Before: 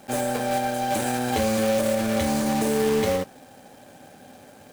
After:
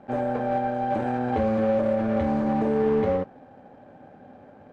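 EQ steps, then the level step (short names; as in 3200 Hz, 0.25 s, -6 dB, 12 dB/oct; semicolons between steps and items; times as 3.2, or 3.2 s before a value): LPF 1300 Hz 12 dB/oct; 0.0 dB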